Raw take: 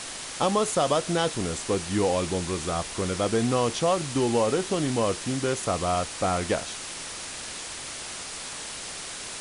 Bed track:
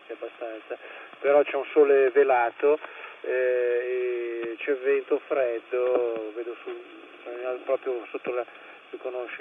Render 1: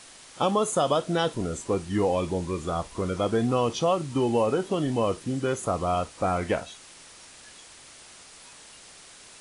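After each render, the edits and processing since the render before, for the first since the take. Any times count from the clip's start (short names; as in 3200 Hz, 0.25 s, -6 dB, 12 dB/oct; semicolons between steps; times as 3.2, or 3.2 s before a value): noise print and reduce 12 dB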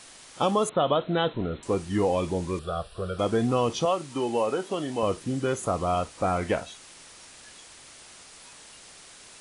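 0.69–1.63 brick-wall FIR low-pass 4200 Hz; 2.59–3.19 fixed phaser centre 1400 Hz, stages 8; 3.85–5.03 HPF 390 Hz 6 dB/oct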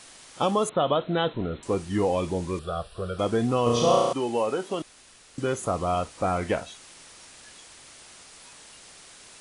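3.63–4.13 flutter echo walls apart 5.8 m, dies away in 1.2 s; 4.82–5.38 room tone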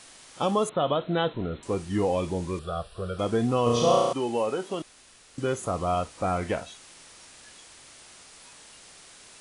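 harmonic-percussive split percussive -3 dB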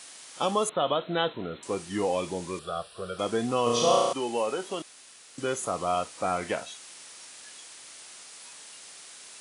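Bessel high-pass 160 Hz, order 2; tilt +1.5 dB/oct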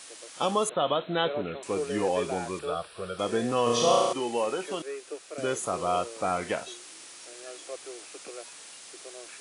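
add bed track -14 dB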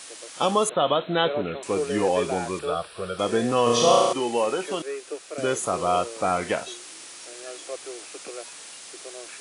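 gain +4.5 dB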